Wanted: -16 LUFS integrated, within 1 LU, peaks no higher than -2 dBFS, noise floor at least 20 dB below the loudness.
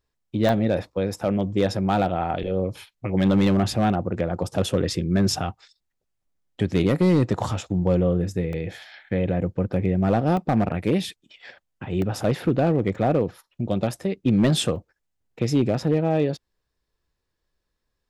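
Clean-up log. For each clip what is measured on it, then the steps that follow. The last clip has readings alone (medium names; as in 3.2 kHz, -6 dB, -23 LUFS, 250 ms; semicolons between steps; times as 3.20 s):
clipped samples 0.7%; clipping level -12.0 dBFS; dropouts 6; longest dropout 1.4 ms; loudness -23.5 LUFS; peak level -12.0 dBFS; loudness target -16.0 LUFS
-> clip repair -12 dBFS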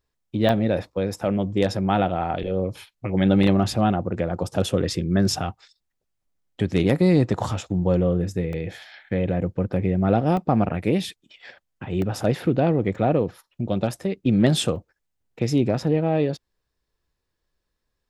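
clipped samples 0.0%; dropouts 6; longest dropout 1.4 ms
-> interpolate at 0.49/8.53/10.37/12.02/12.95/14.76 s, 1.4 ms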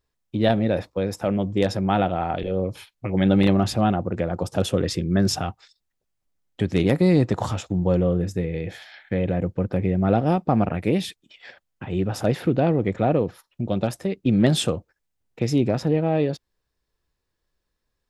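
dropouts 0; loudness -23.0 LUFS; peak level -4.0 dBFS; loudness target -16.0 LUFS
-> trim +7 dB; peak limiter -2 dBFS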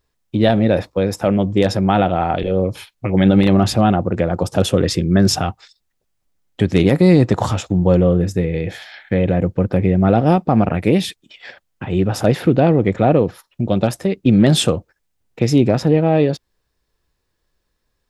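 loudness -16.5 LUFS; peak level -2.0 dBFS; noise floor -72 dBFS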